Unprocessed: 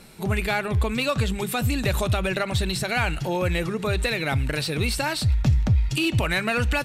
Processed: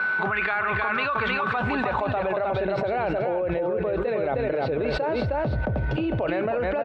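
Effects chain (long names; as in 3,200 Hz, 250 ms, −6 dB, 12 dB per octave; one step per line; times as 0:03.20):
steady tone 1,500 Hz −45 dBFS
Bessel low-pass filter 3,100 Hz, order 4
band-pass filter sweep 1,300 Hz → 550 Hz, 0:01.03–0:02.85
single-tap delay 312 ms −5 dB
envelope flattener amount 100%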